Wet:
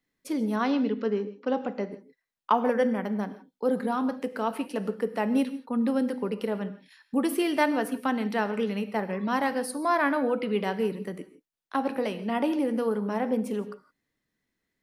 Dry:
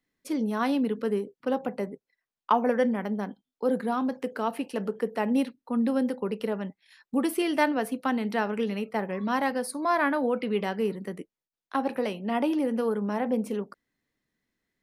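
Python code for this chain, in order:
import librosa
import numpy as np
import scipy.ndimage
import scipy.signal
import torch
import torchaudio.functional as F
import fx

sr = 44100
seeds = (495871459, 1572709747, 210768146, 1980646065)

y = fx.brickwall_bandpass(x, sr, low_hz=170.0, high_hz=7300.0, at=(0.56, 1.91))
y = fx.rev_gated(y, sr, seeds[0], gate_ms=190, shape='flat', drr_db=12.0)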